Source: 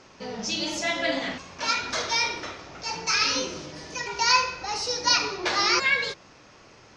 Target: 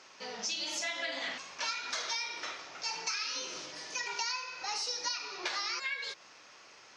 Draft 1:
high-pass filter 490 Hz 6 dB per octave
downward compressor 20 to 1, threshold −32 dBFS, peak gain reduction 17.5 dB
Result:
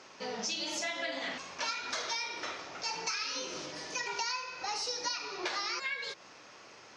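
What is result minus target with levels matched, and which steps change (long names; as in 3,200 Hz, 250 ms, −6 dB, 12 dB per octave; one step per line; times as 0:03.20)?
500 Hz band +4.5 dB
change: high-pass filter 1,300 Hz 6 dB per octave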